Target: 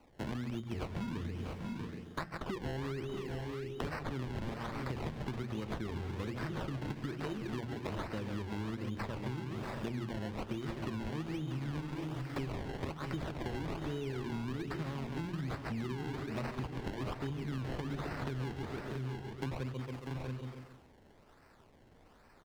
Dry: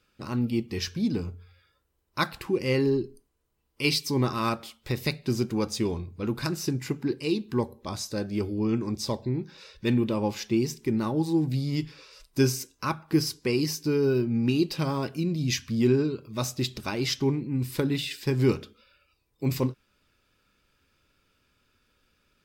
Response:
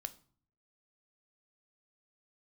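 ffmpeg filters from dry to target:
-filter_complex "[0:a]aemphasis=mode=production:type=50kf,bandreject=f=60:t=h:w=6,bandreject=f=120:t=h:w=6,bandreject=f=180:t=h:w=6,bandreject=f=240:t=h:w=6,bandreject=f=300:t=h:w=6,bandreject=f=360:t=h:w=6,asplit=2[s0][s1];[s1]aecho=0:1:137|274|411|548:0.316|0.117|0.0433|0.016[s2];[s0][s2]amix=inputs=2:normalize=0,acrusher=samples=25:mix=1:aa=0.000001:lfo=1:lforange=25:lforate=1.2,acrossover=split=140|2400|4800[s3][s4][s5][s6];[s3]acompressor=threshold=0.02:ratio=4[s7];[s4]acompressor=threshold=0.0178:ratio=4[s8];[s5]acompressor=threshold=0.00355:ratio=4[s9];[s6]acompressor=threshold=0.00178:ratio=4[s10];[s7][s8][s9][s10]amix=inputs=4:normalize=0,highshelf=f=7000:g=-9.5,asplit=2[s11][s12];[s12]aecho=0:1:640|679:0.237|0.251[s13];[s11][s13]amix=inputs=2:normalize=0,acompressor=threshold=0.0112:ratio=6,volume=1.5"

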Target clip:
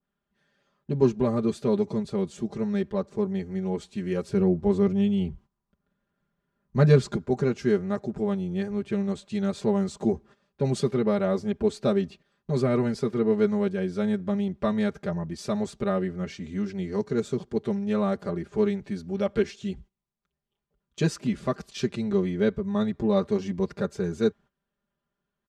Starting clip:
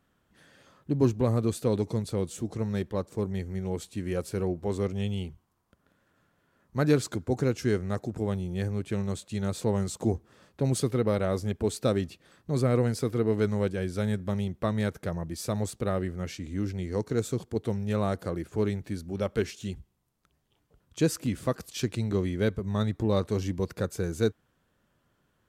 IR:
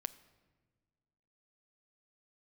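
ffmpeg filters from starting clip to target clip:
-filter_complex "[0:a]asettb=1/sr,asplit=3[s0][s1][s2];[s0]atrim=end=4.294[s3];[s1]atrim=start=4.29:end=7.16,asetpts=PTS-STARTPTS,afade=t=in:d=0.004:c=qsin,afade=t=out:st=2.866:d=0.004:c=qsin,lowshelf=f=220:g=10.5[s4];[s2]atrim=start=7.156[s5];[s3][s4]acrossfade=d=0.004:c1=hsin:c2=qsin[s6];[s6][s5]acrossfade=d=0.004:c1=qsin:c2=hsin,agate=range=0.178:threshold=0.00398:ratio=16:detection=peak,lowpass=5700,aecho=1:1:5:0.91,adynamicequalizer=threshold=0.00631:dfrequency=1600:dqfactor=0.7:tfrequency=1600:tqfactor=0.7:attack=5:release=100:ratio=0.375:range=2:mode=cutabove:tftype=highshelf"

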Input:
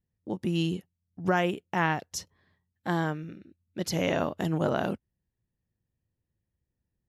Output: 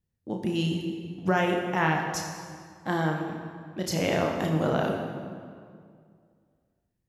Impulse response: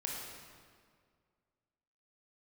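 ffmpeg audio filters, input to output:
-filter_complex "[0:a]asplit=2[s0][s1];[1:a]atrim=start_sample=2205,asetrate=40131,aresample=44100,adelay=32[s2];[s1][s2]afir=irnorm=-1:irlink=0,volume=0.668[s3];[s0][s3]amix=inputs=2:normalize=0"

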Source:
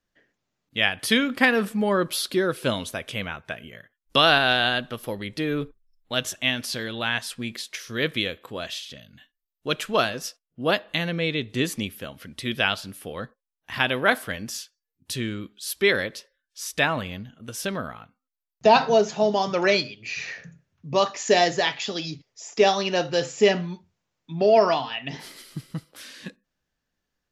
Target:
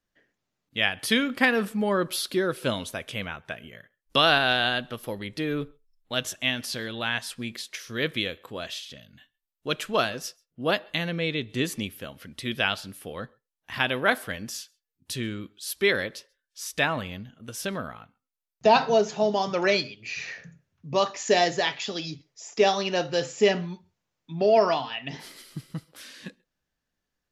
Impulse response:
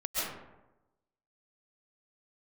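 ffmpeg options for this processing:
-filter_complex "[1:a]atrim=start_sample=2205,afade=t=out:st=0.14:d=0.01,atrim=end_sample=6615,asetrate=31311,aresample=44100[s0];[0:a][s0]afir=irnorm=-1:irlink=0,volume=0.841"

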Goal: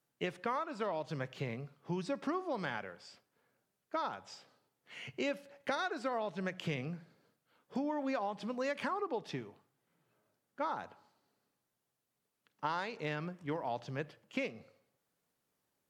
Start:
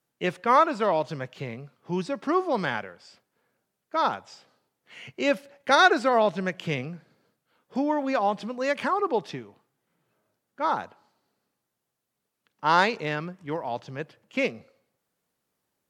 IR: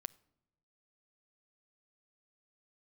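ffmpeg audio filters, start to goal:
-filter_complex "[0:a]acompressor=threshold=0.0355:ratio=10[s0];[1:a]atrim=start_sample=2205,atrim=end_sample=6615[s1];[s0][s1]afir=irnorm=-1:irlink=0"

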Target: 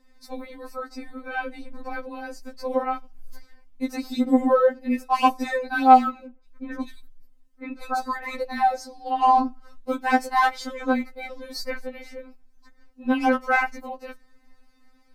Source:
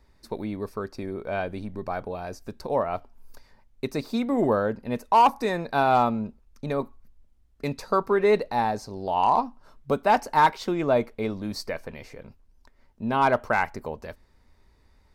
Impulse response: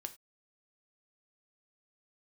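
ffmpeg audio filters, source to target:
-filter_complex "[0:a]asettb=1/sr,asplit=3[s0][s1][s2];[s0]atrim=end=6.264[s3];[s1]atrim=start=6.26:end=8.29,asetpts=PTS-STARTPTS,afade=t=in:d=0.004:c=qsin,afade=t=out:st=2.026:d=0.004:c=qsin,acrossover=split=2600[s4][s5];[s5]adelay=180[s6];[s4][s6]amix=inputs=2:normalize=0,atrim=end_sample=89523[s7];[s2]atrim=start=8.286[s8];[s3][s7]acrossfade=d=0.004:c1=hsin:c2=qsin[s9];[s9][s8]acrossfade=d=0.004:c1=qsin:c2=hsin,afftfilt=real='re*3.46*eq(mod(b,12),0)':imag='im*3.46*eq(mod(b,12),0)':win_size=2048:overlap=0.75,volume=1.68"

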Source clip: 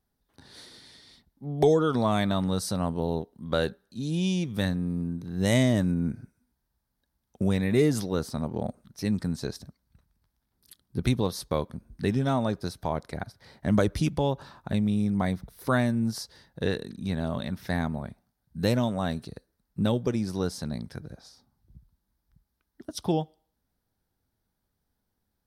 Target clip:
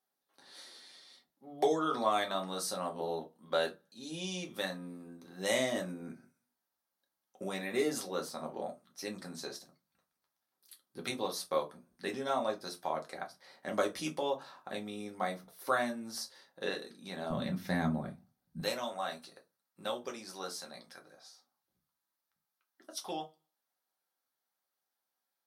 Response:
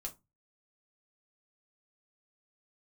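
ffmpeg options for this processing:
-filter_complex "[0:a]asetnsamples=n=441:p=0,asendcmd='17.3 highpass f 150;18.6 highpass f 730',highpass=490[s0];[1:a]atrim=start_sample=2205[s1];[s0][s1]afir=irnorm=-1:irlink=0"

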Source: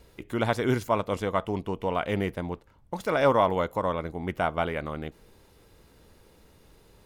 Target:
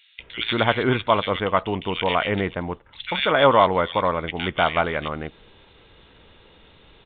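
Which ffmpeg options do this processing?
-filter_complex "[0:a]acrossover=split=2100[s0][s1];[s0]adelay=190[s2];[s2][s1]amix=inputs=2:normalize=0,crystalizer=i=9.5:c=0,aresample=8000,aresample=44100,volume=1.41"

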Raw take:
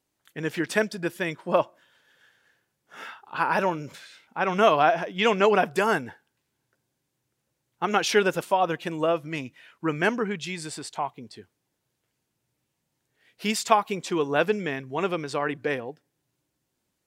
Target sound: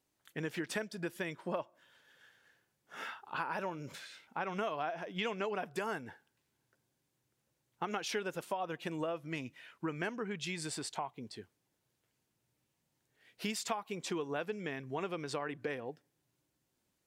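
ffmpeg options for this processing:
-af "acompressor=threshold=0.0251:ratio=5,volume=0.708"

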